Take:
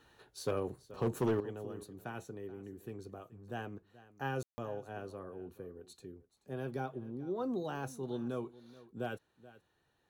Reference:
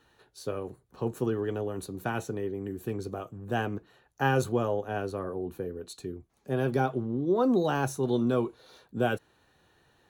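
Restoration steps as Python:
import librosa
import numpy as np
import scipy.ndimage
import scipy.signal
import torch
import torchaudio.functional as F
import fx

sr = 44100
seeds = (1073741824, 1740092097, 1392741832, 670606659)

y = fx.fix_declip(x, sr, threshold_db=-25.5)
y = fx.fix_ambience(y, sr, seeds[0], print_start_s=9.58, print_end_s=10.08, start_s=4.43, end_s=4.58)
y = fx.fix_echo_inverse(y, sr, delay_ms=430, level_db=-18.5)
y = fx.gain(y, sr, db=fx.steps((0.0, 0.0), (1.4, 12.0)))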